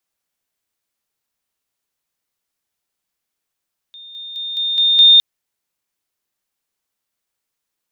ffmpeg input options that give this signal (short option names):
-f lavfi -i "aevalsrc='pow(10,(-35+6*floor(t/0.21))/20)*sin(2*PI*3640*t)':d=1.26:s=44100"